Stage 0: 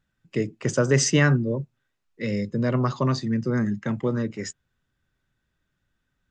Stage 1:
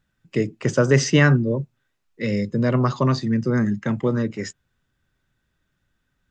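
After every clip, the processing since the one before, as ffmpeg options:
-filter_complex "[0:a]acrossover=split=5300[a][b];[b]acompressor=threshold=-43dB:ratio=4:attack=1:release=60[c];[a][c]amix=inputs=2:normalize=0,volume=3.5dB"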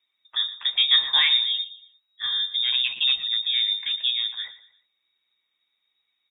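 -af "flanger=delay=6:depth=8.6:regen=-40:speed=0.59:shape=sinusoidal,aecho=1:1:117|234|351:0.178|0.0658|0.0243,lowpass=f=3.2k:t=q:w=0.5098,lowpass=f=3.2k:t=q:w=0.6013,lowpass=f=3.2k:t=q:w=0.9,lowpass=f=3.2k:t=q:w=2.563,afreqshift=-3800"

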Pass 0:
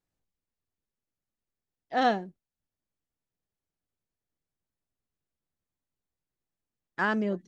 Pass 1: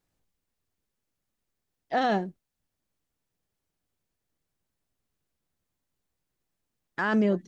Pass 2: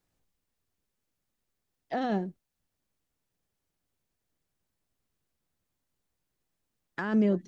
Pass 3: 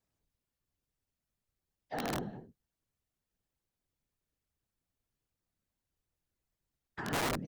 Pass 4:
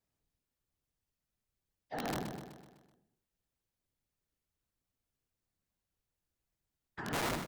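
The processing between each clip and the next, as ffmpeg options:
-af "alimiter=limit=-24dB:level=0:latency=1:release=25,volume=7dB"
-filter_complex "[0:a]acrossover=split=430[a][b];[b]acompressor=threshold=-33dB:ratio=6[c];[a][c]amix=inputs=2:normalize=0"
-filter_complex "[0:a]asplit=2[a][b];[b]adelay=209.9,volume=-14dB,highshelf=f=4k:g=-4.72[c];[a][c]amix=inputs=2:normalize=0,afftfilt=real='hypot(re,im)*cos(2*PI*random(0))':imag='hypot(re,im)*sin(2*PI*random(1))':win_size=512:overlap=0.75,aeval=exprs='(mod(23.7*val(0)+1,2)-1)/23.7':c=same"
-af "aecho=1:1:126|252|378|504|630|756:0.376|0.199|0.106|0.056|0.0297|0.0157,volume=-2dB"

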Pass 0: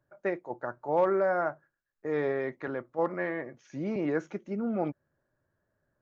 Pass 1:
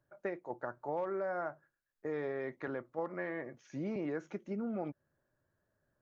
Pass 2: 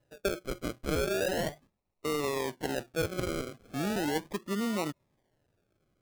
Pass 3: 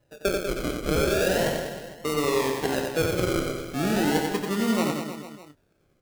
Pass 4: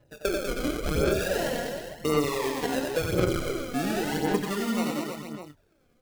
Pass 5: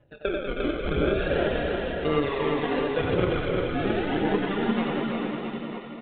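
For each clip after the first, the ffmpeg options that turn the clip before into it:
-af "acompressor=threshold=-32dB:ratio=4,volume=-2.5dB"
-af "acrusher=samples=38:mix=1:aa=0.000001:lfo=1:lforange=22.8:lforate=0.37,volume=6dB"
-filter_complex "[0:a]asplit=2[a][b];[b]adelay=27,volume=-10dB[c];[a][c]amix=inputs=2:normalize=0,aecho=1:1:90|193.5|312.5|449.4|606.8:0.631|0.398|0.251|0.158|0.1,volume=5dB"
-af "acompressor=threshold=-25dB:ratio=6,aphaser=in_gain=1:out_gain=1:delay=4.2:decay=0.51:speed=0.93:type=sinusoidal"
-af "aecho=1:1:350|665|948.5|1204|1433:0.631|0.398|0.251|0.158|0.1,aresample=8000,aresample=44100"

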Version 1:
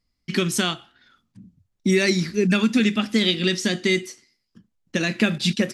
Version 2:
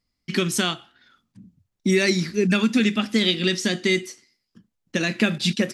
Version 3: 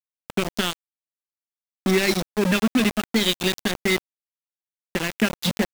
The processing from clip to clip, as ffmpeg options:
-af "lowshelf=f=74:g=-6.5"
-af "afwtdn=0.0316,aeval=exprs='val(0)*gte(abs(val(0)),0.0944)':c=same"

